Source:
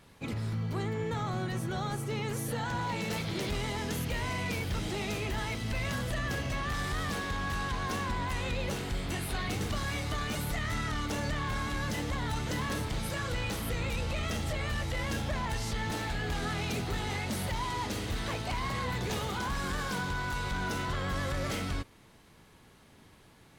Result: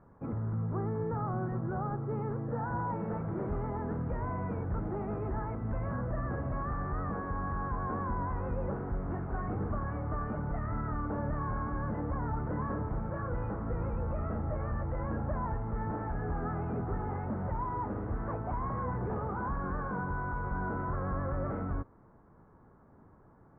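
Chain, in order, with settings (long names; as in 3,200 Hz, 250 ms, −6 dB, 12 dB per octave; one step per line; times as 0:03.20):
Butterworth low-pass 1,400 Hz 36 dB per octave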